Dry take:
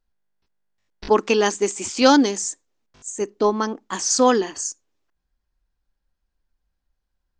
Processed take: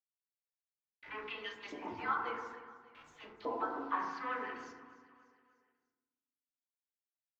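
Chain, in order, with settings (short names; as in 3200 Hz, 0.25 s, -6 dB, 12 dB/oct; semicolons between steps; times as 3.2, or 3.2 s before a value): 1.39–3.96 median-filter separation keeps percussive; tone controls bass +9 dB, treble -11 dB; de-hum 83.84 Hz, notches 18; compressor 6:1, threshold -29 dBFS, peak gain reduction 16.5 dB; soft clip -34 dBFS, distortion -7 dB; dispersion lows, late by 64 ms, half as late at 600 Hz; LFO band-pass saw up 0.58 Hz 710–4300 Hz; bit-crush 11-bit; air absorption 290 m; feedback echo 0.297 s, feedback 51%, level -18 dB; FDN reverb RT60 1.1 s, low-frequency decay 1.55×, high-frequency decay 0.3×, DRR 0 dB; gain +9 dB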